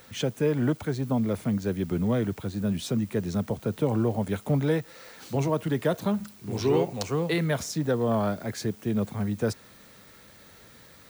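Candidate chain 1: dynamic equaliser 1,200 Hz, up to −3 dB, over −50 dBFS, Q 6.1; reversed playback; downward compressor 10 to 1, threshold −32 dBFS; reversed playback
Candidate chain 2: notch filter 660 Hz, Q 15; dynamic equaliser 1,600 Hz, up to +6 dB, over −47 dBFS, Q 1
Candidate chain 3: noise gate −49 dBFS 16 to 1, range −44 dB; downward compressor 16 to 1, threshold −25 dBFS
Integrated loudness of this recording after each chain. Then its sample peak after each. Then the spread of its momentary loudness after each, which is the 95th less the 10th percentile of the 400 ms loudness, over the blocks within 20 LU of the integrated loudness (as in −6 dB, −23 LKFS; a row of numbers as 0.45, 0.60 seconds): −37.5, −27.5, −31.5 LKFS; −22.5, −11.5, −16.5 dBFS; 12, 6, 4 LU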